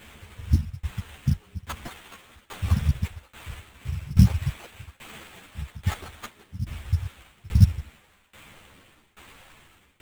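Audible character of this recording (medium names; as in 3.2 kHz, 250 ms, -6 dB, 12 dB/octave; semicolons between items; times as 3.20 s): tremolo saw down 1.2 Hz, depth 95%; phasing stages 2, 0.82 Hz, lowest notch 360–2100 Hz; aliases and images of a low sample rate 5.4 kHz, jitter 20%; a shimmering, thickened sound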